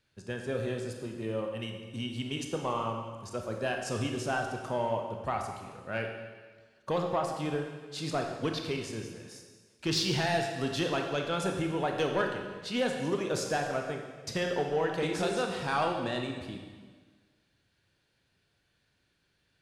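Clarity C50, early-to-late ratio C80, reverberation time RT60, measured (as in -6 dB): 4.5 dB, 6.0 dB, 1.5 s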